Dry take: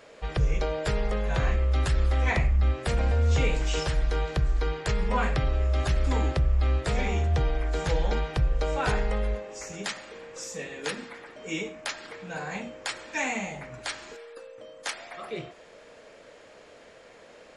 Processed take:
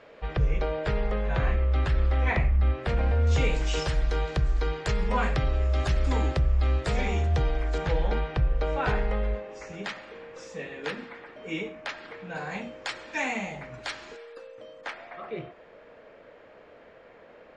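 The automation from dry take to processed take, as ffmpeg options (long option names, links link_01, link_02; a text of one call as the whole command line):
ffmpeg -i in.wav -af "asetnsamples=nb_out_samples=441:pad=0,asendcmd='3.27 lowpass f 7500;7.78 lowpass f 3200;12.35 lowpass f 5100;14.81 lowpass f 2200',lowpass=3100" out.wav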